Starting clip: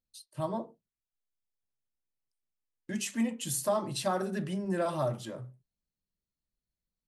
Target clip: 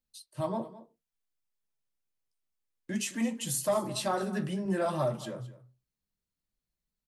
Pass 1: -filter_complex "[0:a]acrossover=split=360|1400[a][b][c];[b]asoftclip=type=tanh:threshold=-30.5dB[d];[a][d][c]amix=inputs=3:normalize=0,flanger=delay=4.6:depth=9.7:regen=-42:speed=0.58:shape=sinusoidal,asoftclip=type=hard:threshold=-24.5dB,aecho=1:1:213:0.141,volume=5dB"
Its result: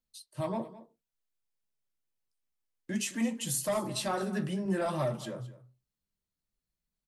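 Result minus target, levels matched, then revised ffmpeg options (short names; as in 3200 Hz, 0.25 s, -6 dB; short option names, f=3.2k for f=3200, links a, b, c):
soft clip: distortion +11 dB
-filter_complex "[0:a]acrossover=split=360|1400[a][b][c];[b]asoftclip=type=tanh:threshold=-22dB[d];[a][d][c]amix=inputs=3:normalize=0,flanger=delay=4.6:depth=9.7:regen=-42:speed=0.58:shape=sinusoidal,asoftclip=type=hard:threshold=-24.5dB,aecho=1:1:213:0.141,volume=5dB"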